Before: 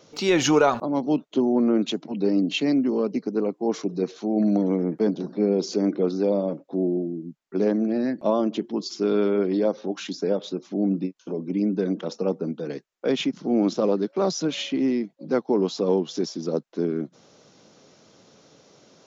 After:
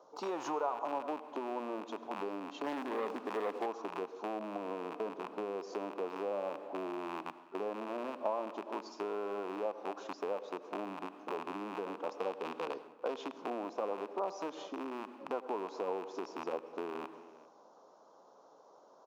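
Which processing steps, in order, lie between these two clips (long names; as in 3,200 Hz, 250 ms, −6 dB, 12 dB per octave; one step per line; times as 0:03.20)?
loose part that buzzes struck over −35 dBFS, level −12 dBFS
high shelf with overshoot 1,500 Hz −14 dB, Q 3
single-tap delay 395 ms −23.5 dB
convolution reverb RT60 0.95 s, pre-delay 75 ms, DRR 15 dB
0:02.64–0:03.66: leveller curve on the samples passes 2
0:12.18–0:13.45: dynamic equaliser 4,000 Hz, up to +5 dB, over −49 dBFS, Q 0.76
downward compressor 6 to 1, threshold −25 dBFS, peak gain reduction 13.5 dB
high-pass filter 520 Hz 12 dB per octave
level −4 dB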